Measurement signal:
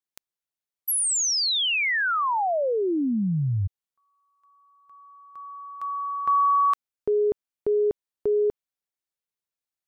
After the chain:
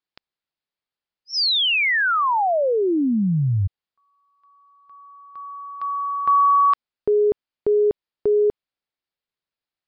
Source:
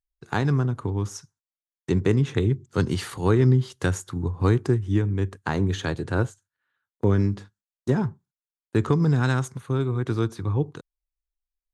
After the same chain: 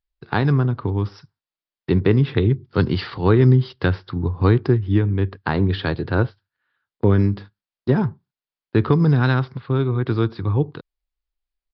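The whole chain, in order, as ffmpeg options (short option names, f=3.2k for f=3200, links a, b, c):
-af "aresample=11025,aresample=44100,volume=4.5dB"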